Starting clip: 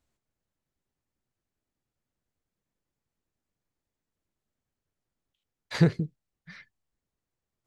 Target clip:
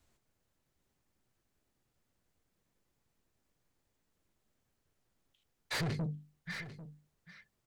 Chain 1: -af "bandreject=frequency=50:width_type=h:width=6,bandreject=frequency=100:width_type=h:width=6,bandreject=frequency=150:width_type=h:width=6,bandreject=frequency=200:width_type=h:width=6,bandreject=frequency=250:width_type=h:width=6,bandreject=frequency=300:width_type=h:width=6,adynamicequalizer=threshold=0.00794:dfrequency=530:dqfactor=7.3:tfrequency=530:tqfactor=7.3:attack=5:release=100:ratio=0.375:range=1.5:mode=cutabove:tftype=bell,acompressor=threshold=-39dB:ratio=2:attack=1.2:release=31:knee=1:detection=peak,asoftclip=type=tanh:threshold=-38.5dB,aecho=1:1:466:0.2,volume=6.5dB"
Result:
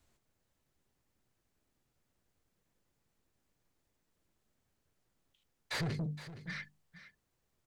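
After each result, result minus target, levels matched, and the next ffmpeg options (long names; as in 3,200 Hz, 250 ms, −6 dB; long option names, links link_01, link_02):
echo 329 ms early; downward compressor: peak gain reduction +4 dB
-af "bandreject=frequency=50:width_type=h:width=6,bandreject=frequency=100:width_type=h:width=6,bandreject=frequency=150:width_type=h:width=6,bandreject=frequency=200:width_type=h:width=6,bandreject=frequency=250:width_type=h:width=6,bandreject=frequency=300:width_type=h:width=6,adynamicequalizer=threshold=0.00794:dfrequency=530:dqfactor=7.3:tfrequency=530:tqfactor=7.3:attack=5:release=100:ratio=0.375:range=1.5:mode=cutabove:tftype=bell,acompressor=threshold=-39dB:ratio=2:attack=1.2:release=31:knee=1:detection=peak,asoftclip=type=tanh:threshold=-38.5dB,aecho=1:1:795:0.2,volume=6.5dB"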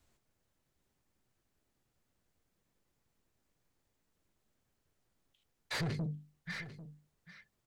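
downward compressor: peak gain reduction +4 dB
-af "bandreject=frequency=50:width_type=h:width=6,bandreject=frequency=100:width_type=h:width=6,bandreject=frequency=150:width_type=h:width=6,bandreject=frequency=200:width_type=h:width=6,bandreject=frequency=250:width_type=h:width=6,bandreject=frequency=300:width_type=h:width=6,adynamicequalizer=threshold=0.00794:dfrequency=530:dqfactor=7.3:tfrequency=530:tqfactor=7.3:attack=5:release=100:ratio=0.375:range=1.5:mode=cutabove:tftype=bell,acompressor=threshold=-31dB:ratio=2:attack=1.2:release=31:knee=1:detection=peak,asoftclip=type=tanh:threshold=-38.5dB,aecho=1:1:795:0.2,volume=6.5dB"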